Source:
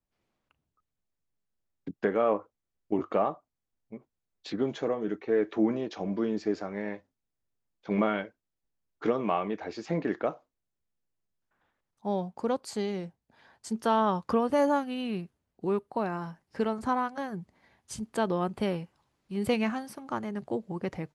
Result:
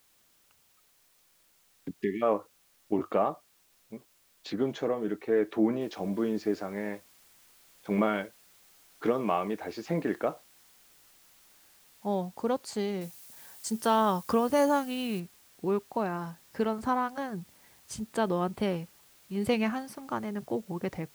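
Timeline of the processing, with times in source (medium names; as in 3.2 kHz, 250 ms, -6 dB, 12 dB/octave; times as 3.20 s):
1.96–2.22 s: spectral selection erased 420–1700 Hz
5.81 s: noise floor step -66 dB -60 dB
13.01–15.20 s: treble shelf 5.2 kHz +11.5 dB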